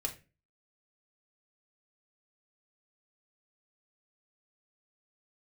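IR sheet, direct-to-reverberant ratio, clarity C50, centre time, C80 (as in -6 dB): 0.5 dB, 13.0 dB, 11 ms, 19.0 dB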